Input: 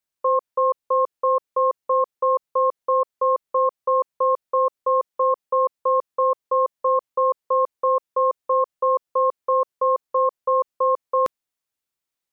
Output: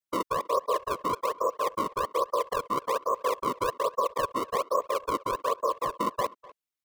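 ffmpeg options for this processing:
-filter_complex "[0:a]afftfilt=real='hypot(re,im)*cos(2*PI*random(0))':imag='hypot(re,im)*sin(2*PI*random(1))':win_size=512:overlap=0.75,atempo=1.8,acrossover=split=360|690[a][b][c];[b]acrusher=samples=30:mix=1:aa=0.000001:lfo=1:lforange=48:lforate=1.2[d];[a][d][c]amix=inputs=3:normalize=0,asplit=2[e][f];[f]adelay=250,highpass=300,lowpass=3.4k,asoftclip=type=hard:threshold=-21.5dB,volume=-20dB[g];[e][g]amix=inputs=2:normalize=0"

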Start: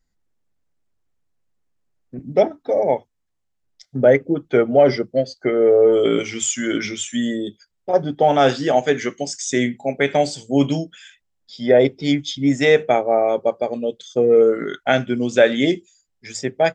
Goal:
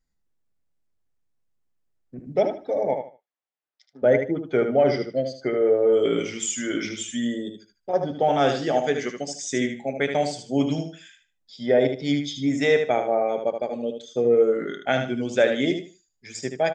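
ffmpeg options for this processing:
-filter_complex "[0:a]asplit=3[a][b][c];[a]afade=t=out:st=2.93:d=0.02[d];[b]highpass=610,lowpass=3.4k,afade=t=in:st=2.93:d=0.02,afade=t=out:st=4.02:d=0.02[e];[c]afade=t=in:st=4.02:d=0.02[f];[d][e][f]amix=inputs=3:normalize=0,aecho=1:1:76|152|228:0.447|0.107|0.0257,volume=-6dB"

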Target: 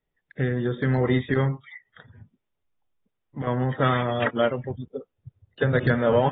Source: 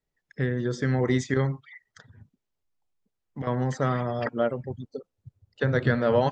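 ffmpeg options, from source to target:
-filter_complex "[0:a]asplit=3[a][b][c];[a]afade=t=out:st=3.8:d=0.02[d];[b]equalizer=f=4.4k:t=o:w=2.9:g=10.5,afade=t=in:st=3.8:d=0.02,afade=t=out:st=4.71:d=0.02[e];[c]afade=t=in:st=4.71:d=0.02[f];[d][e][f]amix=inputs=3:normalize=0,asplit=2[g][h];[h]asoftclip=type=tanh:threshold=-24.5dB,volume=-8.5dB[i];[g][i]amix=inputs=2:normalize=0" -ar 32000 -c:a aac -b:a 16k

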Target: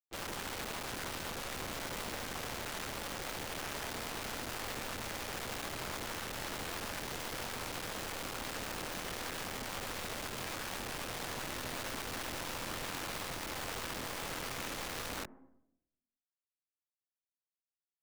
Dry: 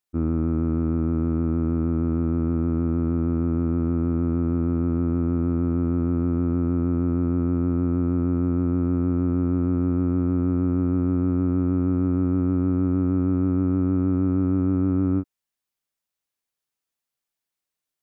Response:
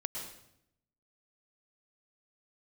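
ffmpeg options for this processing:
-filter_complex "[0:a]aeval=exprs='(tanh(79.4*val(0)+0.45)-tanh(0.45))/79.4':c=same,asplit=4[a][b][c][d];[b]asetrate=29433,aresample=44100,atempo=1.49831,volume=-8dB[e];[c]asetrate=37084,aresample=44100,atempo=1.18921,volume=-1dB[f];[d]asetrate=66075,aresample=44100,atempo=0.66742,volume=-14dB[g];[a][e][f][g]amix=inputs=4:normalize=0,highpass=f=240:w=0.5412,highpass=f=240:w=1.3066,aeval=exprs='0.0398*(cos(1*acos(clip(val(0)/0.0398,-1,1)))-cos(1*PI/2))+0.000447*(cos(3*acos(clip(val(0)/0.0398,-1,1)))-cos(3*PI/2))+0.000501*(cos(5*acos(clip(val(0)/0.0398,-1,1)))-cos(5*PI/2))+0.00501*(cos(8*acos(clip(val(0)/0.0398,-1,1)))-cos(8*PI/2))':c=same,asetrate=41625,aresample=44100,atempo=1.05946,aeval=exprs='sgn(val(0))*max(abs(val(0))-0.00141,0)':c=same,asplit=2[h][i];[i]lowpass=f=1.7k:w=0.5412,lowpass=f=1.7k:w=1.3066[j];[1:a]atrim=start_sample=2205[k];[j][k]afir=irnorm=-1:irlink=0,volume=-18dB[l];[h][l]amix=inputs=2:normalize=0,aeval=exprs='(mod(63.1*val(0)+1,2)-1)/63.1':c=same,volume=3dB"

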